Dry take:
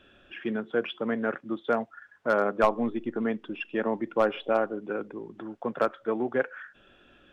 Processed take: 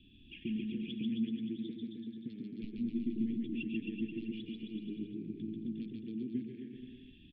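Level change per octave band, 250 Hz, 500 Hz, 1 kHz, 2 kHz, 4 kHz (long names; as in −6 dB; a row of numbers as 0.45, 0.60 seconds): −3.5 dB, −23.0 dB, below −40 dB, −19.5 dB, −7.0 dB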